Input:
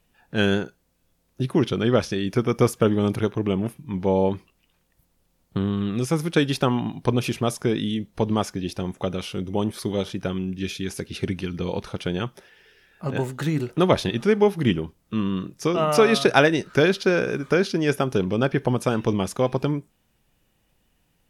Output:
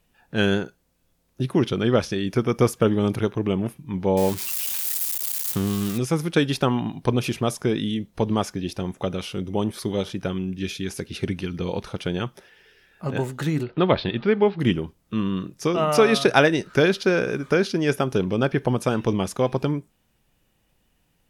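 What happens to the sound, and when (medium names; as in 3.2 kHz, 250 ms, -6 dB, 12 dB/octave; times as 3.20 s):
4.17–5.98 s: zero-crossing glitches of -19 dBFS
13.63–14.60 s: elliptic low-pass 4.4 kHz, stop band 50 dB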